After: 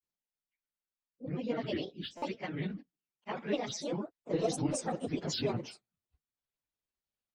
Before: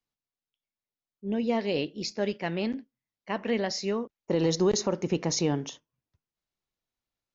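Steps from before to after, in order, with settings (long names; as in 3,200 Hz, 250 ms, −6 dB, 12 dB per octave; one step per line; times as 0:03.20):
random phases in long frames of 50 ms
granular cloud, grains 20 per second, spray 15 ms, pitch spread up and down by 7 semitones
buffer that repeats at 0:02.17, samples 256, times 8
level −5.5 dB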